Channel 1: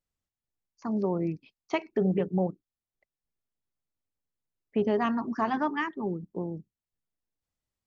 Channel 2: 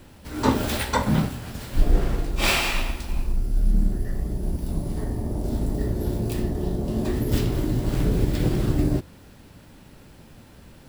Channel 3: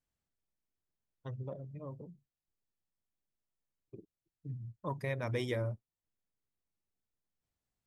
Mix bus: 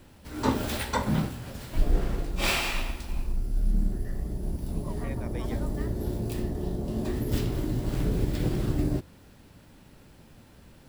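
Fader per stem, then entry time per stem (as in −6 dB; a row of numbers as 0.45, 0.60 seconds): −18.5, −5.0, −6.0 decibels; 0.00, 0.00, 0.00 seconds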